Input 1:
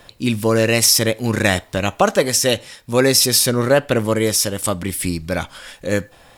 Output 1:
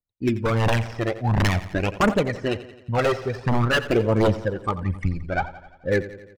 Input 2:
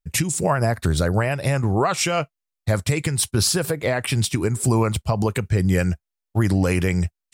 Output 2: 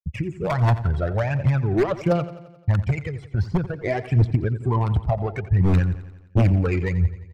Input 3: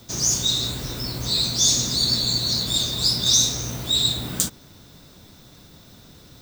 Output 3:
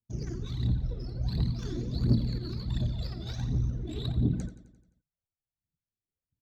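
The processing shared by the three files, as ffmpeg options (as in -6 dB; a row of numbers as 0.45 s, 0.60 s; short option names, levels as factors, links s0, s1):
-filter_complex "[0:a]afftdn=nr=18:nf=-29,aphaser=in_gain=1:out_gain=1:delay=3.1:decay=0.66:speed=1.4:type=triangular,lowpass=f=9100:w=0.5412,lowpass=f=9100:w=1.3066,bandreject=f=3700:w=9.7,acrossover=split=2300[s0][s1];[s1]acompressor=threshold=0.0282:ratio=8[s2];[s0][s2]amix=inputs=2:normalize=0,agate=range=0.0224:threshold=0.0158:ratio=3:detection=peak,adynamicsmooth=sensitivity=1:basefreq=1600,aeval=exprs='0.316*(abs(mod(val(0)/0.316+3,4)-2)-1)':c=same,flanger=delay=0.1:depth=1.5:regen=23:speed=0.48:shape=triangular,aecho=1:1:87|174|261|348|435|522:0.178|0.103|0.0598|0.0347|0.0201|0.0117"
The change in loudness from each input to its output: -6.5 LU, -1.0 LU, -12.0 LU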